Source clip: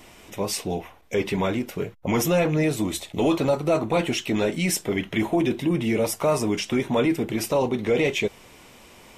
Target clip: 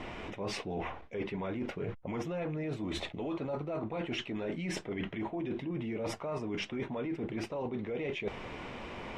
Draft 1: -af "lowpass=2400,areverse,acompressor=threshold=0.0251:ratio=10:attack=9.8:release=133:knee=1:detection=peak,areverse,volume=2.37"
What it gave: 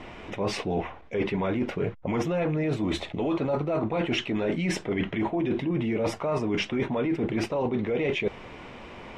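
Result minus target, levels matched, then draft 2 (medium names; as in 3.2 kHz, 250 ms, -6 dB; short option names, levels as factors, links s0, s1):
compression: peak gain reduction -9.5 dB
-af "lowpass=2400,areverse,acompressor=threshold=0.0075:ratio=10:attack=9.8:release=133:knee=1:detection=peak,areverse,volume=2.37"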